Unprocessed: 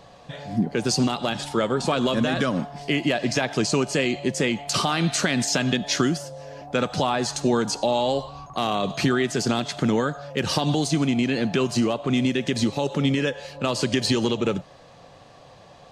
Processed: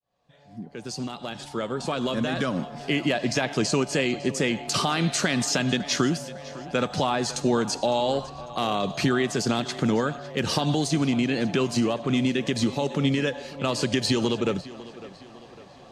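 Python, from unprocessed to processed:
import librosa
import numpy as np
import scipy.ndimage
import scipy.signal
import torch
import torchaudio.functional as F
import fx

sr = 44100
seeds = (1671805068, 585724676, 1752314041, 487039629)

y = fx.fade_in_head(x, sr, length_s=2.95)
y = fx.echo_tape(y, sr, ms=553, feedback_pct=52, wet_db=-16.5, lp_hz=5200.0, drive_db=6.0, wow_cents=14)
y = y * librosa.db_to_amplitude(-1.5)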